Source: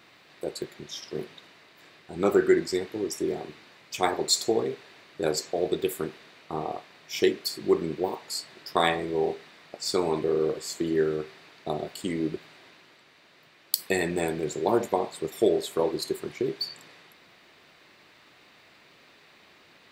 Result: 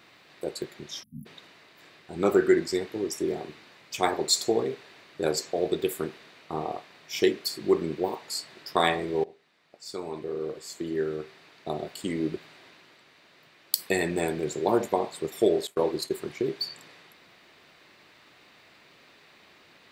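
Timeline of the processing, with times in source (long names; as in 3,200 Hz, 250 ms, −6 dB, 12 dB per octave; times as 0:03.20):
0:01.03–0:01.26: time-frequency box erased 270–10,000 Hz
0:09.24–0:12.28: fade in, from −21 dB
0:15.67–0:16.15: downward expander −34 dBFS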